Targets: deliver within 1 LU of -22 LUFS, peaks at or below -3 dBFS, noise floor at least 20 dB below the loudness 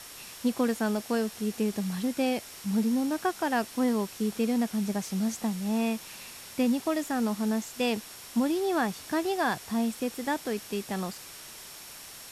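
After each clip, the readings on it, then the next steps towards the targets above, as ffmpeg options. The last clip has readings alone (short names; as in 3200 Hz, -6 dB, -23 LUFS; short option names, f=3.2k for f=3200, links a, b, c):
steady tone 5500 Hz; tone level -54 dBFS; noise floor -46 dBFS; noise floor target -50 dBFS; loudness -29.5 LUFS; peak -15.5 dBFS; loudness target -22.0 LUFS
-> -af "bandreject=f=5.5k:w=30"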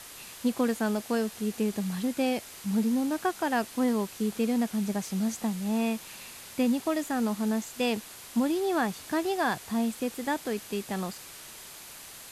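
steady tone none; noise floor -46 dBFS; noise floor target -50 dBFS
-> -af "afftdn=nr=6:nf=-46"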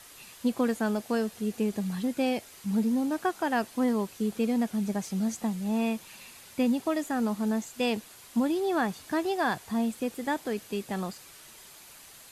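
noise floor -51 dBFS; loudness -30.0 LUFS; peak -16.0 dBFS; loudness target -22.0 LUFS
-> -af "volume=8dB"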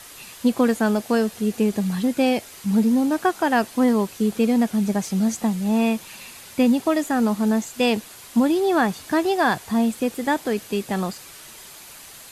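loudness -22.0 LUFS; peak -8.0 dBFS; noise floor -43 dBFS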